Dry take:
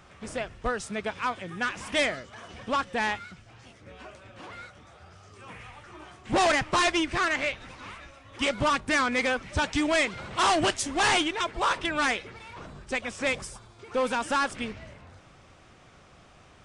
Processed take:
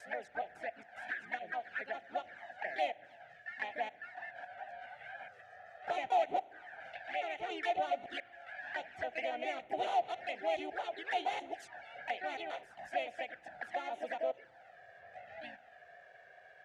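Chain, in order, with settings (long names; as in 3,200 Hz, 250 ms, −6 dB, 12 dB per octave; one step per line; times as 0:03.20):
slices reordered back to front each 139 ms, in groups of 7
downward compressor 1.5 to 1, threshold −42 dBFS, peak gain reduction 7.5 dB
pitch-shifted copies added +4 semitones −2 dB
pair of resonant band-passes 1,100 Hz, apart 1.2 octaves
flanger swept by the level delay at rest 2.1 ms, full sweep at −37.5 dBFS
spring reverb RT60 1.4 s, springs 34 ms, chirp 75 ms, DRR 20 dB
level +7 dB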